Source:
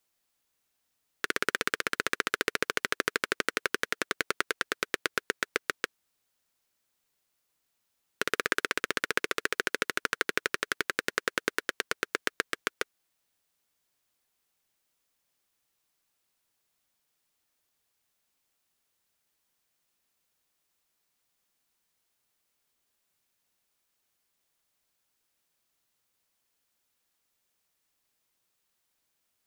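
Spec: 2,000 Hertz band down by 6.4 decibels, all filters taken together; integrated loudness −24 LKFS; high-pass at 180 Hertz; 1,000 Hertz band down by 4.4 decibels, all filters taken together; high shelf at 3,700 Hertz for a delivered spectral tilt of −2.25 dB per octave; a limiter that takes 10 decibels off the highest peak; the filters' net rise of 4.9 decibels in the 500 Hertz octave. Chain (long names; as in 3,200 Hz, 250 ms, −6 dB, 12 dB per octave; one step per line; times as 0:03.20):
high-pass filter 180 Hz
parametric band 500 Hz +7 dB
parametric band 1,000 Hz −3.5 dB
parametric band 2,000 Hz −6 dB
high-shelf EQ 3,700 Hz −7 dB
level +18.5 dB
brickwall limiter −1.5 dBFS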